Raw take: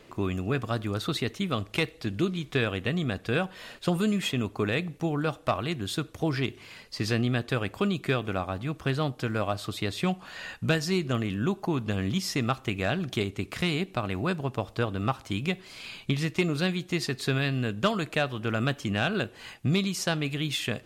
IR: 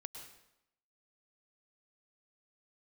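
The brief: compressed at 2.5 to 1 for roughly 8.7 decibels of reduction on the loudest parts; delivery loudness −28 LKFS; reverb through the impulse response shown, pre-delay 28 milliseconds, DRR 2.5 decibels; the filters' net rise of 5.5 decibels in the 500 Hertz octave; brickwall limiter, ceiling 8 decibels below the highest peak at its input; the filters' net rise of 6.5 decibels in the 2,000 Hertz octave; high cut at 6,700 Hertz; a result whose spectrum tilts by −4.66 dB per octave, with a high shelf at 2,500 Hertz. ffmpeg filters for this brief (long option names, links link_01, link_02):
-filter_complex "[0:a]lowpass=6700,equalizer=frequency=500:width_type=o:gain=6.5,equalizer=frequency=2000:width_type=o:gain=4.5,highshelf=frequency=2500:gain=7.5,acompressor=threshold=-30dB:ratio=2.5,alimiter=limit=-22dB:level=0:latency=1,asplit=2[link_01][link_02];[1:a]atrim=start_sample=2205,adelay=28[link_03];[link_02][link_03]afir=irnorm=-1:irlink=0,volume=1.5dB[link_04];[link_01][link_04]amix=inputs=2:normalize=0,volume=3.5dB"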